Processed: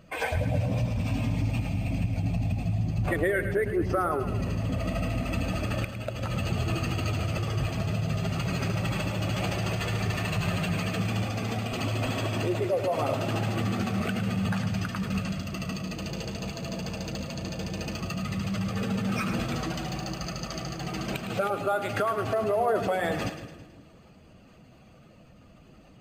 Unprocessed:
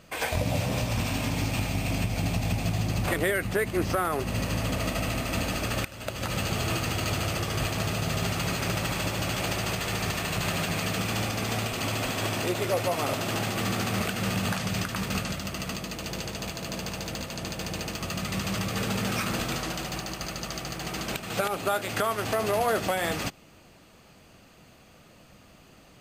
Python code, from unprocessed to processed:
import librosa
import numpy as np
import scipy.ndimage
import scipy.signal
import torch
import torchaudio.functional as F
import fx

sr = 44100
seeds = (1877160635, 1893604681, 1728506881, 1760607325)

y = fx.spec_expand(x, sr, power=1.6)
y = fx.echo_split(y, sr, split_hz=410.0, low_ms=174, high_ms=108, feedback_pct=52, wet_db=-9.5)